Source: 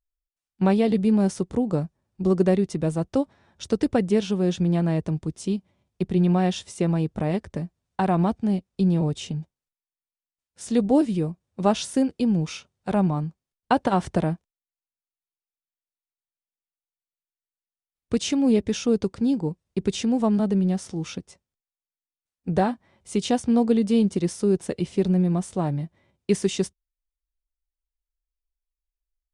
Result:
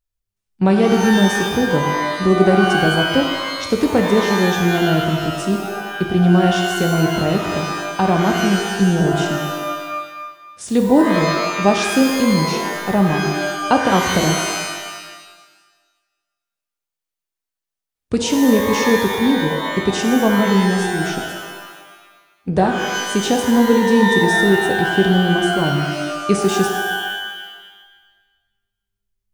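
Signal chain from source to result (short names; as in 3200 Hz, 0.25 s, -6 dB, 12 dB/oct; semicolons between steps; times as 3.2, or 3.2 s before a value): shimmer reverb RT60 1.3 s, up +12 st, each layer -2 dB, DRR 4 dB; gain +5 dB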